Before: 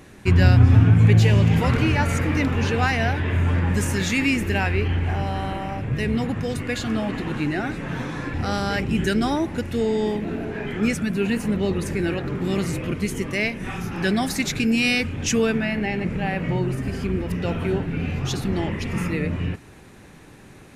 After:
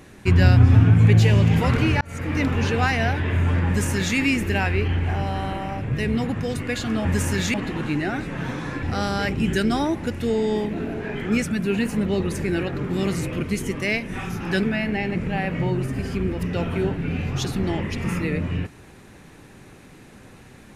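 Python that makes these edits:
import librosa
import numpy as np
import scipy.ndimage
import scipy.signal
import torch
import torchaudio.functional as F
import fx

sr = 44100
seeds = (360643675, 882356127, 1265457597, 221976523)

y = fx.edit(x, sr, fx.fade_in_span(start_s=2.01, length_s=0.43),
    fx.duplicate(start_s=3.67, length_s=0.49, to_s=7.05),
    fx.cut(start_s=14.14, length_s=1.38), tone=tone)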